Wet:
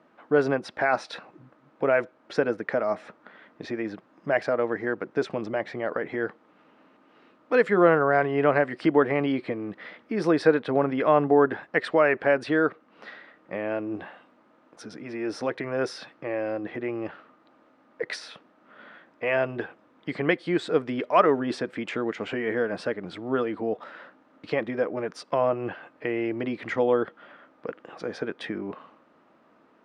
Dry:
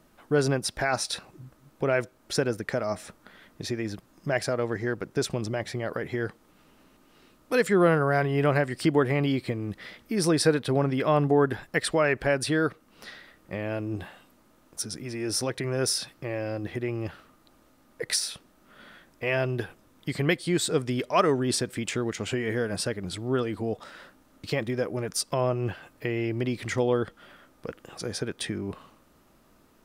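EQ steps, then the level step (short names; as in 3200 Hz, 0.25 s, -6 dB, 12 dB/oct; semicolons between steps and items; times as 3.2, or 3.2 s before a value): BPF 270–2100 Hz; notch 380 Hz, Q 12; +4.0 dB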